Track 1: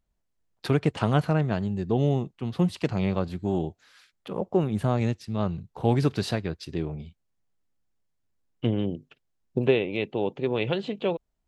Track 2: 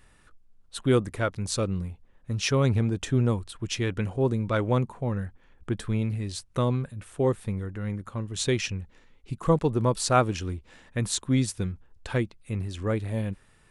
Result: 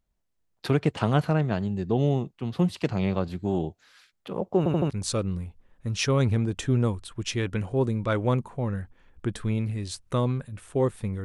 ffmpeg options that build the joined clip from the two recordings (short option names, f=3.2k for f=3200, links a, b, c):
-filter_complex "[0:a]apad=whole_dur=11.24,atrim=end=11.24,asplit=4[a][b][c][d];[a]atrim=end=4.662[e];[b]atrim=start=4.578:end=4.662[f];[c]atrim=start=4.578:end=4.662[g];[d]atrim=start=4.578:end=4.662[h];[1:a]atrim=start=1.338:end=7.68[i];[e][f]acrossfade=d=0.004:c1=hsin:c2=hsin[j];[j][g]acrossfade=d=0.004:c1=hsin:c2=hsin[k];[k][h]acrossfade=d=0.004:c1=hsin:c2=hsin[l];[l][i]acrossfade=d=0.004:c1=hsin:c2=hsin"